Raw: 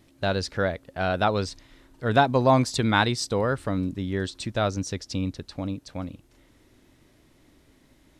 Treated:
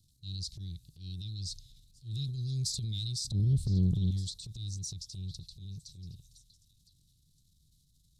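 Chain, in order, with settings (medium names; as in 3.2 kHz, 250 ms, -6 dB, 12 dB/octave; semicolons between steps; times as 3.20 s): Chebyshev band-stop 160–3900 Hz, order 4; 3.24–4.11 s: resonant low shelf 350 Hz +11.5 dB, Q 3; transient shaper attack -10 dB, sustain +7 dB; repeats whose band climbs or falls 507 ms, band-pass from 1.4 kHz, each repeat 1.4 oct, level -11 dB; loudspeaker Doppler distortion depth 0.2 ms; trim -5 dB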